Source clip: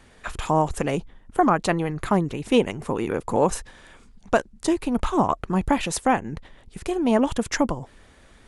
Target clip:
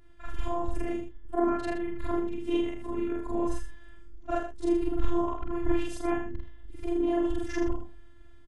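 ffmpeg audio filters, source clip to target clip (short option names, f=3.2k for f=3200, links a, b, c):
-filter_complex "[0:a]afftfilt=real='re':imag='-im':win_size=4096:overlap=0.75,bass=f=250:g=15,treble=f=4k:g=-8,afftfilt=real='hypot(re,im)*cos(PI*b)':imag='0':win_size=512:overlap=0.75,agate=range=-33dB:threshold=-46dB:ratio=3:detection=peak,asplit=2[a][b];[b]aecho=0:1:79:0.376[c];[a][c]amix=inputs=2:normalize=0,volume=-3.5dB"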